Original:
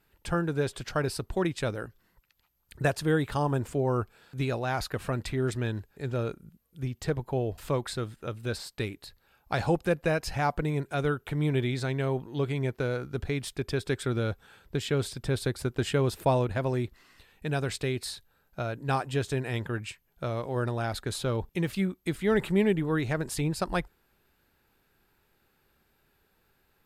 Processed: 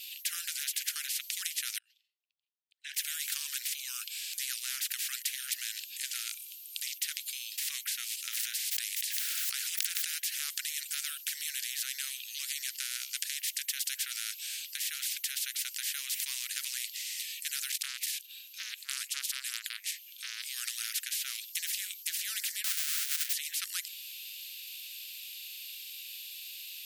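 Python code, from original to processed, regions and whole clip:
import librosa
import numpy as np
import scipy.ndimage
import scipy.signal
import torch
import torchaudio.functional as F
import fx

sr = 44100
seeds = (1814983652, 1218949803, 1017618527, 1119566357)

y = fx.chain(x, sr, fx.peak_eq(hz=840.0, db=-6.5, octaves=1.1),
    fx.auto_wah(base_hz=220.0, top_hz=1700.0, q=17.0, full_db=-28.0, direction='up'),
    fx.sustainer(db_per_s=130.0), at=(1.78, 2.94))
y = fx.chain(y, sr, fx.highpass(hz=1200.0, slope=24),
    fx.pre_swell(db_per_s=26.0), at=(8.29, 10.23))
y = fx.chain(y, sr, fx.bass_treble(bass_db=11, treble_db=-4),
    fx.transformer_sat(knee_hz=1200.0), at=(17.71, 20.46))
y = fx.chain(y, sr, fx.halfwave_hold(),
    fx.cheby2_highpass(hz=570.0, order=4, stop_db=40), at=(22.64, 23.33))
y = scipy.signal.sosfilt(scipy.signal.butter(8, 2700.0, 'highpass', fs=sr, output='sos'), y)
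y = fx.tilt_eq(y, sr, slope=-1.5)
y = fx.spectral_comp(y, sr, ratio=10.0)
y = y * 10.0 ** (10.0 / 20.0)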